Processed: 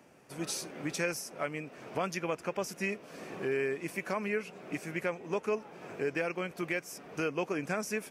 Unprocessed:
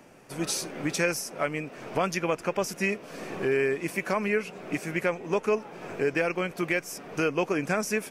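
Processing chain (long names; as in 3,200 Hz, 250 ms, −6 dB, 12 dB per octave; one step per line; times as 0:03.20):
high-pass filter 52 Hz
level −6.5 dB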